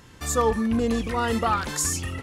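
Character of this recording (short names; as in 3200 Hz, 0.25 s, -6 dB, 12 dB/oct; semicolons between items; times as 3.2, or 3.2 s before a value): noise floor -50 dBFS; spectral tilt -4.0 dB/oct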